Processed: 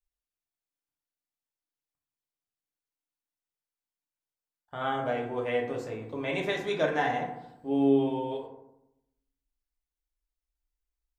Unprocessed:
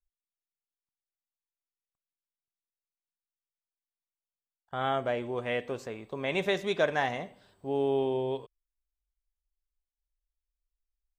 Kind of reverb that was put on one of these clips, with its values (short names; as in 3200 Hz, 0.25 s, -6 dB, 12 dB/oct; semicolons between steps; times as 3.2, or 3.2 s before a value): FDN reverb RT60 0.85 s, low-frequency decay 1.35×, high-frequency decay 0.4×, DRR -1.5 dB; gain -3.5 dB